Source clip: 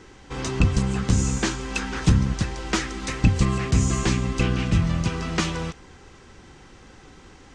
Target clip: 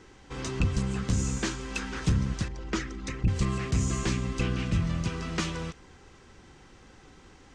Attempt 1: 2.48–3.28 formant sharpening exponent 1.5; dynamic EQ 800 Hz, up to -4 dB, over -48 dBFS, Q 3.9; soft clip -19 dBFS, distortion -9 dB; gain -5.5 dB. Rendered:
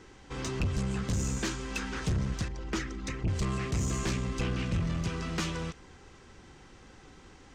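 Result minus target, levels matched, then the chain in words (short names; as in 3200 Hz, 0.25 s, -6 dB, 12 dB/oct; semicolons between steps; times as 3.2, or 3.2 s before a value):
soft clip: distortion +11 dB
2.48–3.28 formant sharpening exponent 1.5; dynamic EQ 800 Hz, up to -4 dB, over -48 dBFS, Q 3.9; soft clip -9.5 dBFS, distortion -20 dB; gain -5.5 dB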